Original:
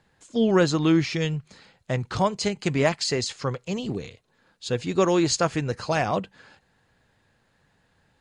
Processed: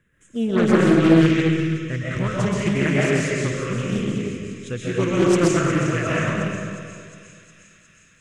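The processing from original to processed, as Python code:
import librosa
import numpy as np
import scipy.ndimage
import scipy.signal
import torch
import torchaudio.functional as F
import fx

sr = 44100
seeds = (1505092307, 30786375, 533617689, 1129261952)

p1 = fx.peak_eq(x, sr, hz=920.0, db=-5.0, octaves=0.39)
p2 = fx.fixed_phaser(p1, sr, hz=1900.0, stages=4)
p3 = p2 + fx.echo_wet_highpass(p2, sr, ms=359, feedback_pct=71, hz=3500.0, wet_db=-9, dry=0)
p4 = fx.rev_freeverb(p3, sr, rt60_s=2.2, hf_ratio=0.7, predelay_ms=95, drr_db=-7.0)
y = fx.doppler_dist(p4, sr, depth_ms=0.47)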